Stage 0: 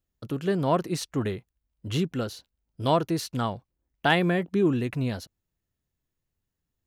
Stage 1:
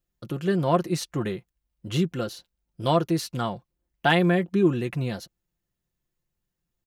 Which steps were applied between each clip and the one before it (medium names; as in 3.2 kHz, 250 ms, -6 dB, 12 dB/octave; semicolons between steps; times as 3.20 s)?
comb 5.7 ms, depth 50%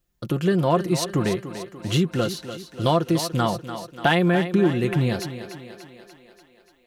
compression 2.5:1, threshold -26 dBFS, peak gain reduction 8 dB; thinning echo 292 ms, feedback 61%, high-pass 180 Hz, level -10.5 dB; trim +7.5 dB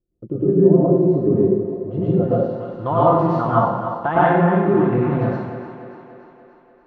low-pass sweep 390 Hz -> 1.1 kHz, 1.54–2.80 s; plate-style reverb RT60 1 s, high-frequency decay 0.9×, pre-delay 90 ms, DRR -9 dB; trim -6 dB